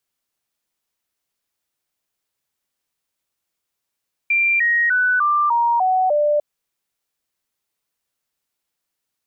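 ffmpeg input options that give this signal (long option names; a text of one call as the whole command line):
ffmpeg -f lavfi -i "aevalsrc='0.2*clip(min(mod(t,0.3),0.3-mod(t,0.3))/0.005,0,1)*sin(2*PI*2370*pow(2,-floor(t/0.3)/3)*mod(t,0.3))':duration=2.1:sample_rate=44100" out.wav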